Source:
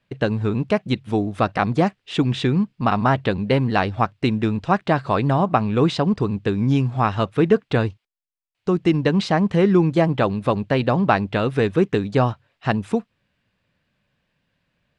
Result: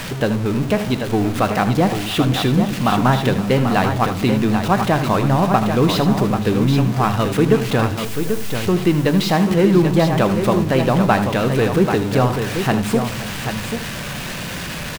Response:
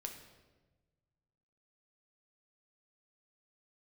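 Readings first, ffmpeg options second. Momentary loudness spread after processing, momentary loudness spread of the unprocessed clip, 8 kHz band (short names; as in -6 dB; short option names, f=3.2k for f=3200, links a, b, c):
8 LU, 5 LU, n/a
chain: -filter_complex "[0:a]aeval=exprs='val(0)+0.5*0.075*sgn(val(0))':c=same,aecho=1:1:79|519|788:0.266|0.133|0.447,asplit=2[a][b];[1:a]atrim=start_sample=2205,asetrate=70560,aresample=44100[c];[b][c]afir=irnorm=-1:irlink=0,volume=2dB[d];[a][d]amix=inputs=2:normalize=0,volume=-3.5dB"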